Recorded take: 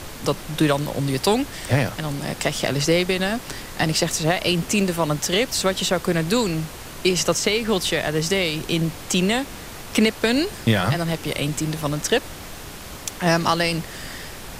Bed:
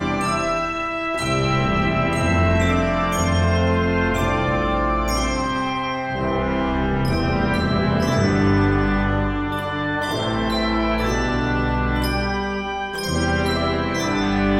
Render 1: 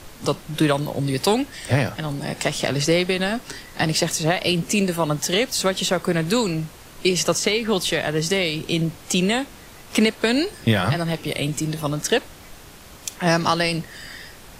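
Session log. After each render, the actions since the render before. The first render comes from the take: noise print and reduce 7 dB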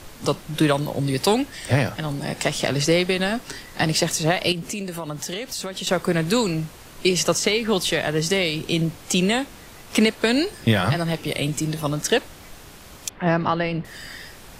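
4.52–5.87 s: compression 4:1, threshold -27 dBFS; 13.09–13.85 s: distance through air 420 m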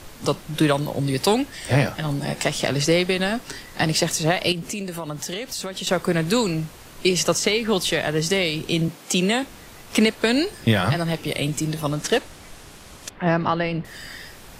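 1.60–2.44 s: doubling 14 ms -7 dB; 8.88–9.43 s: high-pass 160 Hz 24 dB/octave; 11.89–13.11 s: CVSD coder 64 kbps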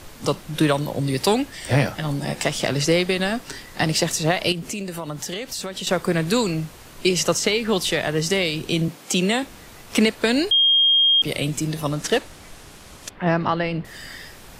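10.51–11.22 s: bleep 3.23 kHz -13 dBFS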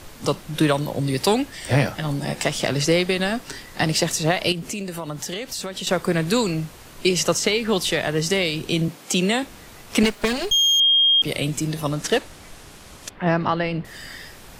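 10.03–10.80 s: comb filter that takes the minimum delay 4.9 ms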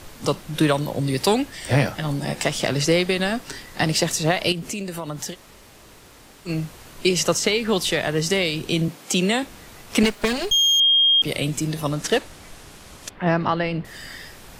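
5.33–6.48 s: room tone, crossfade 0.06 s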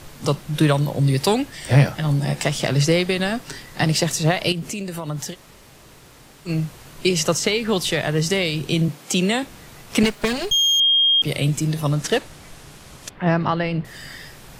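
peaking EQ 140 Hz +8 dB 0.39 oct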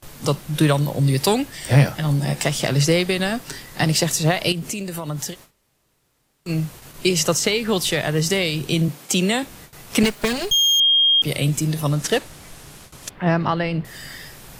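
gate with hold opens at -32 dBFS; treble shelf 9.8 kHz +8.5 dB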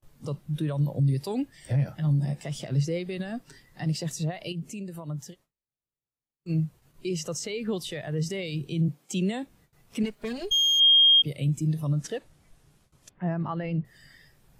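peak limiter -14 dBFS, peak gain reduction 10 dB; spectral contrast expander 1.5:1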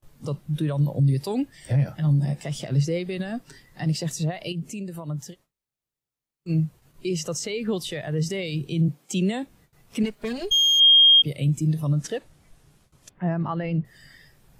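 trim +3.5 dB

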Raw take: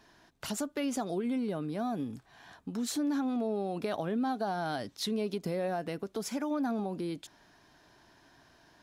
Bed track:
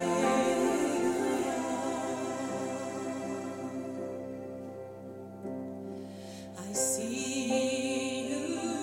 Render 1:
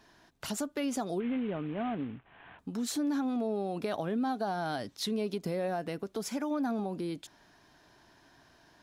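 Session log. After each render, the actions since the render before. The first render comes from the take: 1.20–2.59 s: CVSD coder 16 kbps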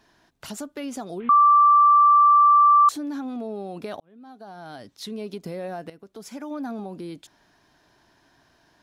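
1.29–2.89 s: bleep 1.17 kHz -11.5 dBFS; 4.00–5.33 s: fade in; 5.90–6.57 s: fade in, from -13 dB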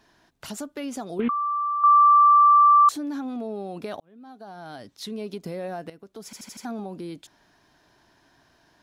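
1.19–1.84 s: compressor with a negative ratio -25 dBFS; 6.25 s: stutter in place 0.08 s, 5 plays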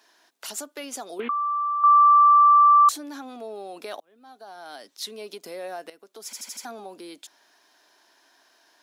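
Bessel high-pass 450 Hz, order 4; treble shelf 3.7 kHz +7.5 dB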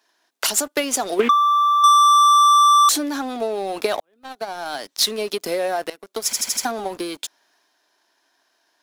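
waveshaping leveller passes 3; transient shaper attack +7 dB, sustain +3 dB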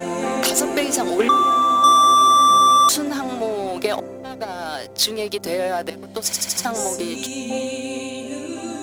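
add bed track +4 dB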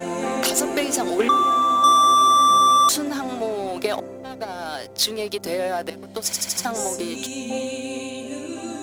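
trim -2 dB

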